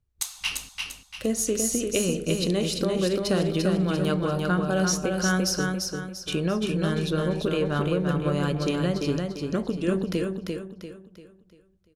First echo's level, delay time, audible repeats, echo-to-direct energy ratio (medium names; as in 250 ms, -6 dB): -4.0 dB, 344 ms, 4, -3.5 dB